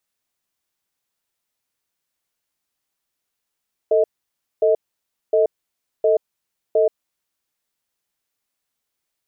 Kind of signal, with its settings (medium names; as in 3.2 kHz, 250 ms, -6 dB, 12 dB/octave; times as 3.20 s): cadence 444 Hz, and 631 Hz, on 0.13 s, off 0.58 s, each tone -15.5 dBFS 3.09 s